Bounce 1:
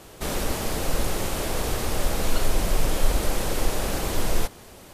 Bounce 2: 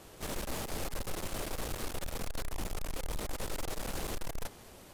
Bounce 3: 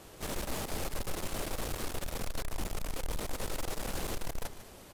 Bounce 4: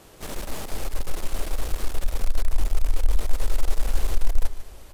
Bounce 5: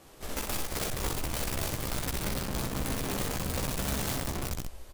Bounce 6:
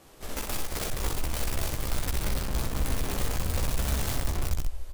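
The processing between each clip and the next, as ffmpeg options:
-af "aeval=exprs='(tanh(31.6*val(0)+0.6)-tanh(0.6))/31.6':c=same,bandreject=f=412.6:t=h:w=4,bandreject=f=825.2:t=h:w=4,bandreject=f=1237.8:t=h:w=4,bandreject=f=1650.4:t=h:w=4,bandreject=f=2063:t=h:w=4,volume=0.631"
-af "aecho=1:1:148:0.211,volume=1.12"
-af "asubboost=boost=10.5:cutoff=52,volume=1.26"
-filter_complex "[0:a]aeval=exprs='(mod(15*val(0)+1,2)-1)/15':c=same,asplit=2[s0][s1];[s1]aecho=0:1:15|62:0.596|0.631[s2];[s0][s2]amix=inputs=2:normalize=0,volume=0.501"
-af "asubboost=boost=4:cutoff=87"

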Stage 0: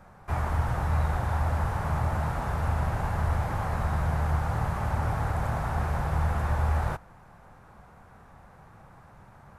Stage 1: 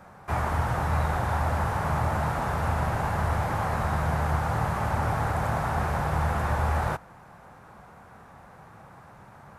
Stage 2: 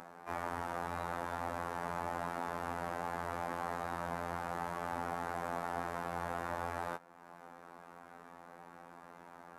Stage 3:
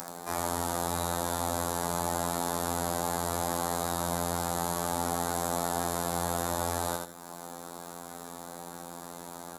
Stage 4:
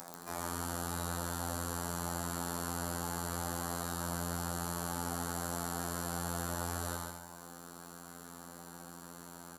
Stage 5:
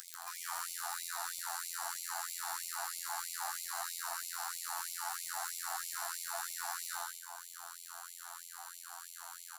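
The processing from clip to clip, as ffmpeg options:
-af "highpass=f=130:p=1,volume=1.68"
-af "afftfilt=real='hypot(re,im)*cos(PI*b)':imag='0':win_size=2048:overlap=0.75,acompressor=mode=upward:threshold=0.02:ratio=2.5,lowshelf=f=170:t=q:w=1.5:g=-13.5,volume=0.447"
-filter_complex "[0:a]asplit=2[s0][s1];[s1]alimiter=level_in=2.37:limit=0.0631:level=0:latency=1,volume=0.422,volume=0.794[s2];[s0][s2]amix=inputs=2:normalize=0,aecho=1:1:81|162|243|324:0.596|0.161|0.0434|0.0117,aexciter=amount=2.5:drive=9.7:freq=3900,volume=1.5"
-af "aecho=1:1:140|280|420|560|700:0.668|0.241|0.0866|0.0312|0.0112,volume=0.422"
-af "asoftclip=type=tanh:threshold=0.02,afftfilt=real='re*gte(b*sr/1024,610*pow(2100/610,0.5+0.5*sin(2*PI*3.1*pts/sr)))':imag='im*gte(b*sr/1024,610*pow(2100/610,0.5+0.5*sin(2*PI*3.1*pts/sr)))':win_size=1024:overlap=0.75,volume=1.88"

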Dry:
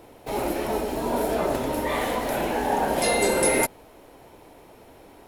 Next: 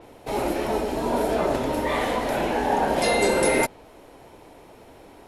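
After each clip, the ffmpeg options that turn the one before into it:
-af "lowpass=11000,adynamicequalizer=threshold=0.00708:dfrequency=6600:dqfactor=0.7:tfrequency=6600:tqfactor=0.7:attack=5:release=100:ratio=0.375:range=2.5:mode=cutabove:tftype=highshelf,volume=1.19"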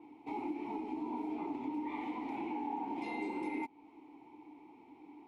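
-filter_complex "[0:a]asplit=3[s0][s1][s2];[s0]bandpass=f=300:t=q:w=8,volume=1[s3];[s1]bandpass=f=870:t=q:w=8,volume=0.501[s4];[s2]bandpass=f=2240:t=q:w=8,volume=0.355[s5];[s3][s4][s5]amix=inputs=3:normalize=0,acompressor=threshold=0.01:ratio=3,volume=1.26"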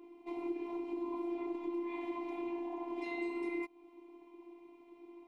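-af "afftfilt=real='hypot(re,im)*cos(PI*b)':imag='0':win_size=512:overlap=0.75,volume=1.33"

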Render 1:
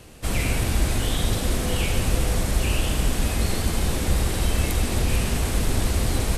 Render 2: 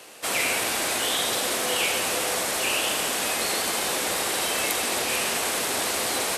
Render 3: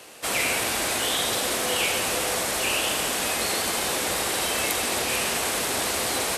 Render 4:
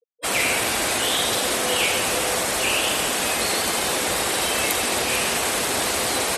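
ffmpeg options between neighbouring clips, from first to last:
-af "highpass=550,volume=1.88"
-af "lowshelf=f=95:g=11.5"
-af "afftfilt=real='re*gte(hypot(re,im),0.0251)':imag='im*gte(hypot(re,im),0.0251)':win_size=1024:overlap=0.75,volume=1.5"

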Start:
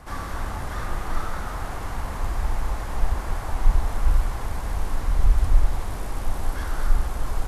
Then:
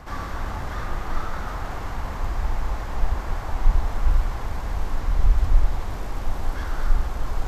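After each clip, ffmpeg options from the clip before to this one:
-af "equalizer=f=10000:w=1.8:g=-12.5,areverse,acompressor=mode=upward:threshold=0.0562:ratio=2.5,areverse"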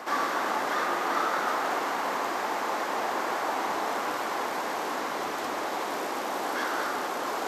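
-af "highpass=f=290:w=0.5412,highpass=f=290:w=1.3066,volume=2.24"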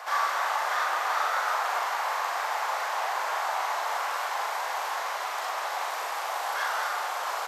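-filter_complex "[0:a]highpass=f=660:w=0.5412,highpass=f=660:w=1.3066,asplit=2[s0][s1];[s1]adelay=40,volume=0.631[s2];[s0][s2]amix=inputs=2:normalize=0"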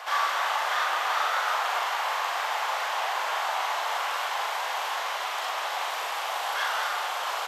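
-af "equalizer=f=3100:t=o:w=0.74:g=7.5"

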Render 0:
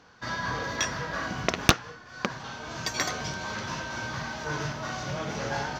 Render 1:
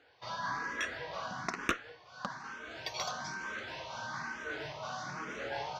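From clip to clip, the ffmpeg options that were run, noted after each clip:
-filter_complex "[0:a]asplit=2[s0][s1];[s1]highpass=f=720:p=1,volume=4.47,asoftclip=type=tanh:threshold=0.596[s2];[s0][s2]amix=inputs=2:normalize=0,lowpass=f=2900:p=1,volume=0.501,asplit=2[s3][s4];[s4]afreqshift=1.1[s5];[s3][s5]amix=inputs=2:normalize=1,volume=0.355"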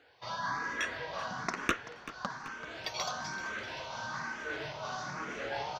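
-filter_complex "[0:a]asplit=6[s0][s1][s2][s3][s4][s5];[s1]adelay=384,afreqshift=-39,volume=0.178[s6];[s2]adelay=768,afreqshift=-78,volume=0.1[s7];[s3]adelay=1152,afreqshift=-117,volume=0.0556[s8];[s4]adelay=1536,afreqshift=-156,volume=0.0313[s9];[s5]adelay=1920,afreqshift=-195,volume=0.0176[s10];[s0][s6][s7][s8][s9][s10]amix=inputs=6:normalize=0,volume=1.19"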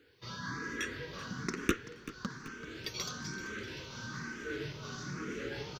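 -af "firequalizer=gain_entry='entry(420,0);entry(670,-26);entry(1300,-10);entry(12000,1)':delay=0.05:min_phase=1,volume=1.88"

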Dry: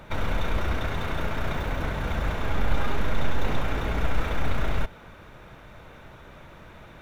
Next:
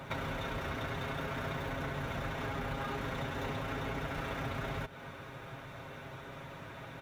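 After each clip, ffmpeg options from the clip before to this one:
-af "highpass=71,aecho=1:1:7.4:0.58,acompressor=threshold=0.0178:ratio=5"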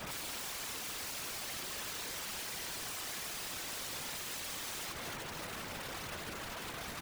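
-af "aecho=1:1:64.14|285.7:0.891|0.316,aeval=exprs='(mod(89.1*val(0)+1,2)-1)/89.1':c=same,afftfilt=real='hypot(re,im)*cos(2*PI*random(0))':imag='hypot(re,im)*sin(2*PI*random(1))':win_size=512:overlap=0.75,volume=2.51"

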